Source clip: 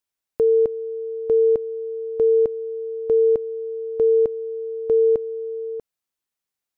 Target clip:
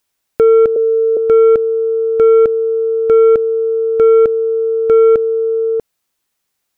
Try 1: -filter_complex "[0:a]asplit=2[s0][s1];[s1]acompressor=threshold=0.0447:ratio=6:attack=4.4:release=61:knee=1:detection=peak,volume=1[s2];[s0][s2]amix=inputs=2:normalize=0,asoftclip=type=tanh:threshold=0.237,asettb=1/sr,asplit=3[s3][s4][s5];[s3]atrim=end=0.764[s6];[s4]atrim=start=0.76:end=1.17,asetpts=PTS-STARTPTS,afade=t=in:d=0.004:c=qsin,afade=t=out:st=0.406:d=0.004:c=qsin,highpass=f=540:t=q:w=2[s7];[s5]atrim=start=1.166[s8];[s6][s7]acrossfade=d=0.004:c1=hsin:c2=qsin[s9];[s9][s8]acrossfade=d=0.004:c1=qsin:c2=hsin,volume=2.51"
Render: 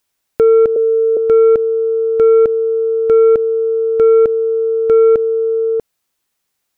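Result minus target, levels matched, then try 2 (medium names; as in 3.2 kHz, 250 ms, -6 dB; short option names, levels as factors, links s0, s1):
compression: peak gain reduction +5.5 dB
-filter_complex "[0:a]asplit=2[s0][s1];[s1]acompressor=threshold=0.0944:ratio=6:attack=4.4:release=61:knee=1:detection=peak,volume=1[s2];[s0][s2]amix=inputs=2:normalize=0,asoftclip=type=tanh:threshold=0.237,asettb=1/sr,asplit=3[s3][s4][s5];[s3]atrim=end=0.764[s6];[s4]atrim=start=0.76:end=1.17,asetpts=PTS-STARTPTS,afade=t=in:d=0.004:c=qsin,afade=t=out:st=0.406:d=0.004:c=qsin,highpass=f=540:t=q:w=2[s7];[s5]atrim=start=1.166[s8];[s6][s7]acrossfade=d=0.004:c1=hsin:c2=qsin[s9];[s9][s8]acrossfade=d=0.004:c1=qsin:c2=hsin,volume=2.51"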